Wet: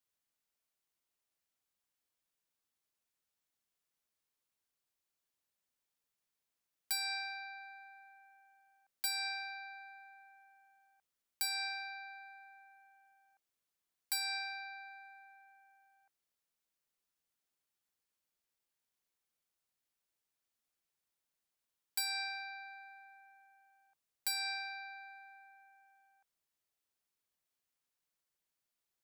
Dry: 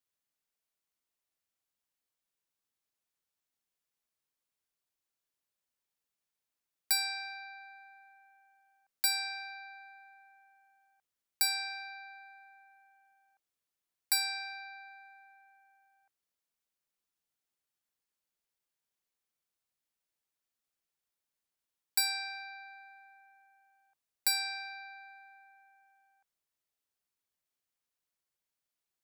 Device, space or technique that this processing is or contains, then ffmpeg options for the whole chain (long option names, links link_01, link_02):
clipper into limiter: -af "asoftclip=type=hard:threshold=-22dB,alimiter=level_in=4.5dB:limit=-24dB:level=0:latency=1:release=145,volume=-4.5dB"